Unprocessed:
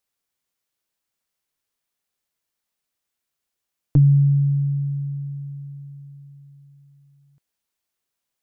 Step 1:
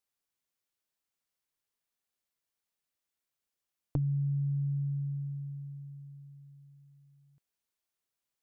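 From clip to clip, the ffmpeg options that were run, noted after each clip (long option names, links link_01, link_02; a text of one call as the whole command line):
ffmpeg -i in.wav -af "acompressor=threshold=-22dB:ratio=6,volume=-7dB" out.wav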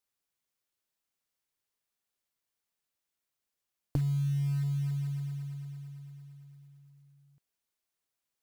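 ffmpeg -i in.wav -af "acrusher=bits=6:mode=log:mix=0:aa=0.000001,volume=1dB" out.wav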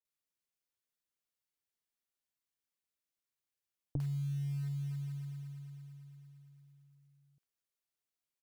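ffmpeg -i in.wav -filter_complex "[0:a]acrossover=split=880[link_01][link_02];[link_02]adelay=50[link_03];[link_01][link_03]amix=inputs=2:normalize=0,volume=-6.5dB" out.wav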